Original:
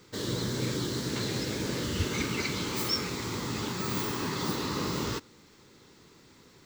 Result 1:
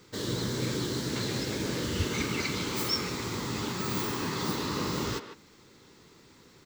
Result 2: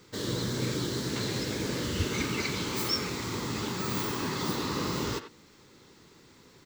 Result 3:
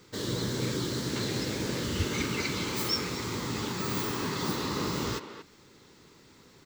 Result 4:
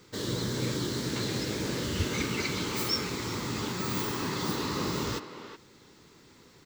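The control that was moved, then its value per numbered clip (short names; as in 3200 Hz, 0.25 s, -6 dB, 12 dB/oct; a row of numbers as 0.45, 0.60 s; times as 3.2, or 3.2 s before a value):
speakerphone echo, time: 150, 90, 230, 370 ms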